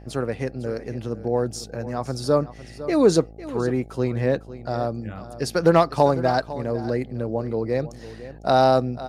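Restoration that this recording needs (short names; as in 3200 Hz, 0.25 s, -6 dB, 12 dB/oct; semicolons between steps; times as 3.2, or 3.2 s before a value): de-hum 54.4 Hz, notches 15; inverse comb 0.503 s -15 dB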